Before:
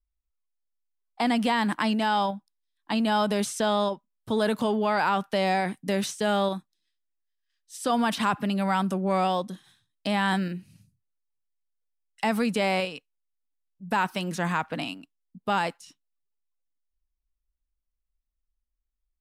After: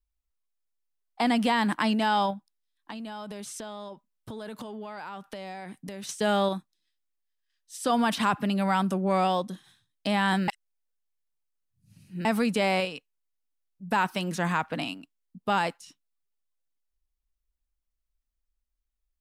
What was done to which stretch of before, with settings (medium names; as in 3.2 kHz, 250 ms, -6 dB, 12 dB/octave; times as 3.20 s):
2.33–6.09 s: compression, threshold -36 dBFS
10.48–12.25 s: reverse